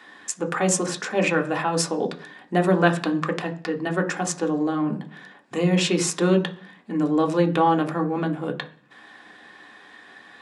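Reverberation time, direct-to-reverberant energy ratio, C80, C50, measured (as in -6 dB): 0.40 s, 3.0 dB, 19.5 dB, 15.0 dB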